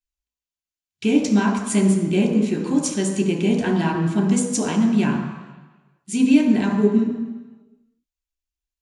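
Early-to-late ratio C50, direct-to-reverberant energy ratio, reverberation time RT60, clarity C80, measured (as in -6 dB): 5.5 dB, 0.0 dB, 1.2 s, 7.5 dB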